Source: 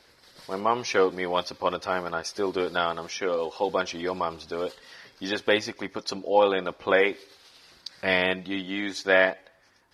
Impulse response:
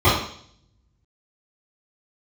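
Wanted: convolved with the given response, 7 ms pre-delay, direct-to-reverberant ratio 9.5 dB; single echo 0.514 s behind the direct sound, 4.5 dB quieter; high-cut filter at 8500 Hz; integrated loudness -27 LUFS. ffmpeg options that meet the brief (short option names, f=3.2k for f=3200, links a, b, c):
-filter_complex "[0:a]lowpass=8.5k,aecho=1:1:514:0.596,asplit=2[a][b];[1:a]atrim=start_sample=2205,adelay=7[c];[b][c]afir=irnorm=-1:irlink=0,volume=-33dB[d];[a][d]amix=inputs=2:normalize=0,volume=-2dB"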